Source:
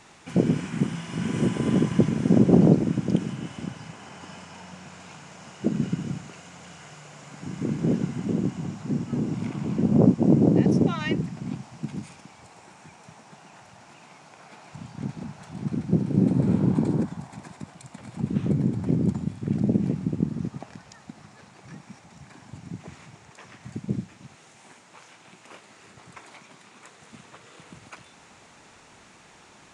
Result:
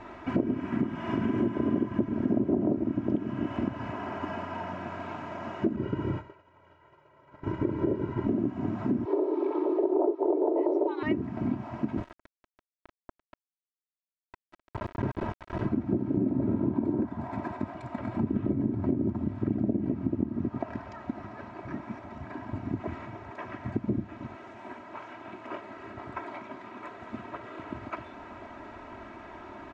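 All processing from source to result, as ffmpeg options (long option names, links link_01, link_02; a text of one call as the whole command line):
ffmpeg -i in.wav -filter_complex "[0:a]asettb=1/sr,asplit=3[link_01][link_02][link_03];[link_01]atrim=end=5.764[link_04];[link_02]atrim=start=5.76:end=8.27,asetpts=PTS-STARTPTS,afade=type=in:duration=0.004:curve=qsin,afade=type=out:start_time=2.506:duration=0.004:curve=qsin,agate=range=-33dB:threshold=-33dB:ratio=3:release=100:detection=peak,highshelf=frequency=5600:gain=-9,aecho=1:1:2.1:0.73,atrim=end_sample=110691[link_05];[link_03]atrim=start=8.266[link_06];[link_04][link_05]acrossfade=duration=0.004:curve1=hsin:curve2=qsin[link_07];[link_07][link_06]acrossfade=duration=0.004:curve1=qsin:curve2=hsin,asettb=1/sr,asplit=3[link_08][link_09][link_10];[link_08]atrim=end=9.054[link_11];[link_09]atrim=start=9.05:end=11.03,asetpts=PTS-STARTPTS,afade=type=in:duration=0.004:curve=qsin,afade=type=out:start_time=1.976:duration=0.004:curve=qsin,highpass=180,equalizer=frequency=290:width_type=q:width=4:gain=5,equalizer=frequency=710:width_type=q:width=4:gain=10,equalizer=frequency=1400:width_type=q:width=4:gain=-7,equalizer=frequency=2600:width_type=q:width=4:gain=-5,equalizer=frequency=3800:width_type=q:width=4:gain=7,lowpass=frequency=5900:width=0.5412,lowpass=frequency=5900:width=1.3066,afreqshift=160[link_12];[link_10]atrim=start=11.026[link_13];[link_11][link_12]acrossfade=duration=0.004:curve1=hsin:curve2=qsin[link_14];[link_14][link_13]acrossfade=duration=0.004:curve1=qsin:curve2=hsin,asettb=1/sr,asplit=3[link_15][link_16][link_17];[link_15]atrim=end=11.974[link_18];[link_16]atrim=start=11.97:end=15.68,asetpts=PTS-STARTPTS,afade=type=in:duration=0.004:curve=qsin,afade=type=out:start_time=3.706:duration=0.004:curve=qsin,aecho=1:1:2:0.66,atrim=end_sample=163611,aeval=exprs='val(0)*gte(abs(val(0)),0.015)':channel_layout=same[link_19];[link_17]atrim=start=15.676[link_20];[link_18][link_19]acrossfade=duration=0.004:curve1=hsin:curve2=qsin[link_21];[link_21][link_20]acrossfade=duration=0.004:curve1=qsin:curve2=hsin,lowpass=1400,aecho=1:1:3.1:0.79,acompressor=threshold=-34dB:ratio=5,volume=8.5dB" out.wav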